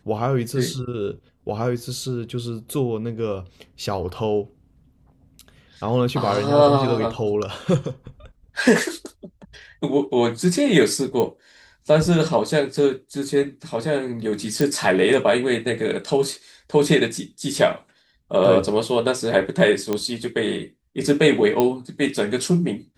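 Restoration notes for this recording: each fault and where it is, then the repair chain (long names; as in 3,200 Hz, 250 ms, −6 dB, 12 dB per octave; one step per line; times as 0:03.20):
0:11.20: click −11 dBFS
0:14.61: click
0:19.93: click −10 dBFS
0:21.60: click −6 dBFS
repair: click removal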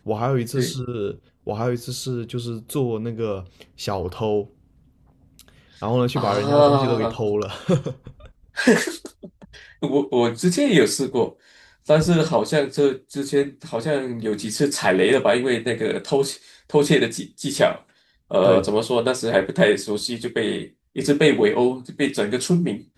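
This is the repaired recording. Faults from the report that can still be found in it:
none of them is left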